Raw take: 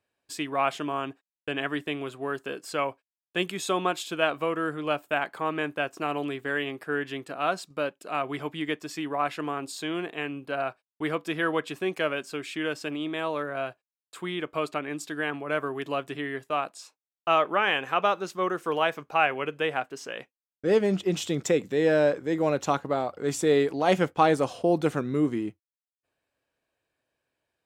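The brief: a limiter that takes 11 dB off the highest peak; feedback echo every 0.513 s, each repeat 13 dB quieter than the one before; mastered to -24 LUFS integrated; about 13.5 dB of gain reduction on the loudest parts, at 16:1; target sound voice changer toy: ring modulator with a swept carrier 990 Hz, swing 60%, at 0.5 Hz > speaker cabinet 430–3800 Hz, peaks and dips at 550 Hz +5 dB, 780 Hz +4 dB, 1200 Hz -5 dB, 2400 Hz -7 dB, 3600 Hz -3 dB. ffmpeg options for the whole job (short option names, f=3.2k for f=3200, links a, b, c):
-af "acompressor=threshold=-30dB:ratio=16,alimiter=level_in=4dB:limit=-24dB:level=0:latency=1,volume=-4dB,aecho=1:1:513|1026|1539:0.224|0.0493|0.0108,aeval=exprs='val(0)*sin(2*PI*990*n/s+990*0.6/0.5*sin(2*PI*0.5*n/s))':c=same,highpass=430,equalizer=f=550:t=q:w=4:g=5,equalizer=f=780:t=q:w=4:g=4,equalizer=f=1.2k:t=q:w=4:g=-5,equalizer=f=2.4k:t=q:w=4:g=-7,equalizer=f=3.6k:t=q:w=4:g=-3,lowpass=f=3.8k:w=0.5412,lowpass=f=3.8k:w=1.3066,volume=19dB"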